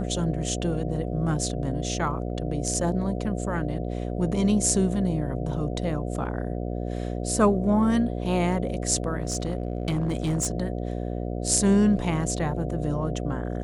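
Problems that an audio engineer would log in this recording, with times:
buzz 60 Hz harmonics 12 -30 dBFS
9.22–10.47 clipped -21 dBFS

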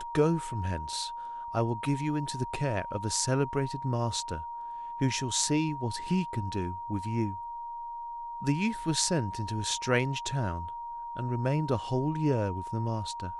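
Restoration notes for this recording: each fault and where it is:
tone 940 Hz -36 dBFS

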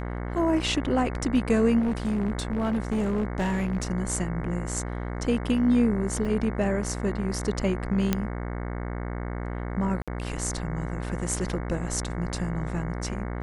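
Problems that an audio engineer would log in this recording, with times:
buzz 60 Hz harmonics 37 -32 dBFS
1.79–3.85 clipped -22 dBFS
6.25 gap 3.4 ms
8.13 pop -9 dBFS
10.02–10.08 gap 56 ms

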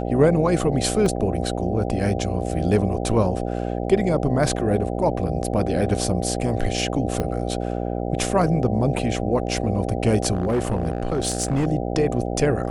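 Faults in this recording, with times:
buzz 60 Hz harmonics 13 -26 dBFS
1.06 gap 2.7 ms
7.2 pop -12 dBFS
10.32–11.67 clipped -17 dBFS

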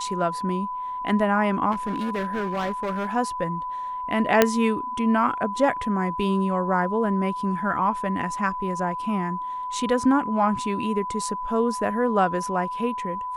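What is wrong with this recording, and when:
tone 1000 Hz -28 dBFS
1.71–3.14 clipped -23 dBFS
4.42 pop -1 dBFS

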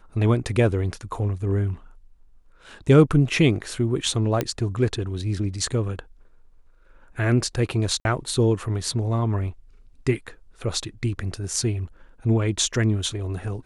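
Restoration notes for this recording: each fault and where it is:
4.41 pop -9 dBFS
8–8.05 gap 51 ms

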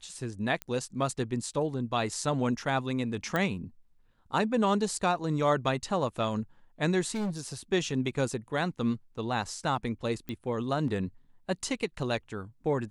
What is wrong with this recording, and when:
0.62 pop -19 dBFS
3.36 pop -16 dBFS
7.14–7.53 clipped -28.5 dBFS
10.29 pop -23 dBFS

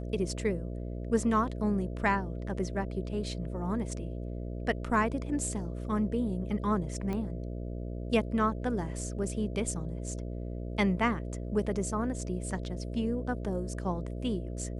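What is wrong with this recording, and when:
buzz 60 Hz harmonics 11 -37 dBFS
7.13 pop -23 dBFS

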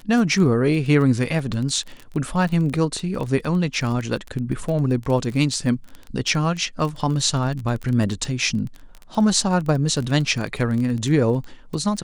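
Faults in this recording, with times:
crackle 22/s -26 dBFS

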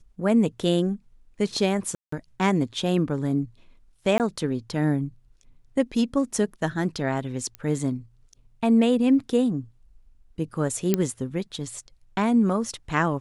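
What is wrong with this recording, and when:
1.95–2.12 gap 0.174 s
4.18–4.2 gap 18 ms
7.55 pop -20 dBFS
10.94 pop -7 dBFS

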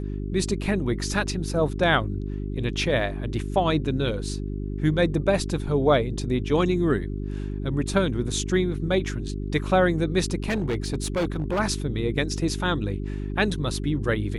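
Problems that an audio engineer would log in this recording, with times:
hum 50 Hz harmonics 8 -30 dBFS
10.44–11.6 clipped -21 dBFS

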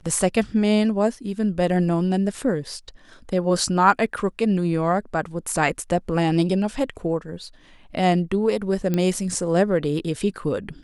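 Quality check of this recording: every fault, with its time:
8.94 pop -11 dBFS

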